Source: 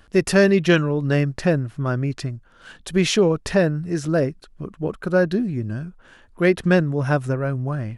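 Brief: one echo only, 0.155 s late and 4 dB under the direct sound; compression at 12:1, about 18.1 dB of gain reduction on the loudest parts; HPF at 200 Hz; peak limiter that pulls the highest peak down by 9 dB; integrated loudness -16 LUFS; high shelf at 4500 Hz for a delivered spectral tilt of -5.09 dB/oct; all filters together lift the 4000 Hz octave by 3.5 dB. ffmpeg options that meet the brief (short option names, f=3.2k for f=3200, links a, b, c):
-af "highpass=200,equalizer=f=4k:t=o:g=3,highshelf=f=4.5k:g=3,acompressor=threshold=-31dB:ratio=12,alimiter=level_in=3.5dB:limit=-24dB:level=0:latency=1,volume=-3.5dB,aecho=1:1:155:0.631,volume=21.5dB"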